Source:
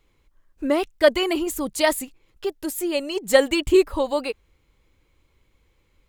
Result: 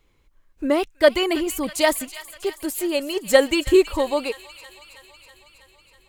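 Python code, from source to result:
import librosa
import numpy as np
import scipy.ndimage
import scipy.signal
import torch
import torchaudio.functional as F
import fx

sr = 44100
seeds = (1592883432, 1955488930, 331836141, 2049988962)

y = fx.echo_wet_highpass(x, sr, ms=323, feedback_pct=69, hz=1400.0, wet_db=-13.5)
y = y * 10.0 ** (1.0 / 20.0)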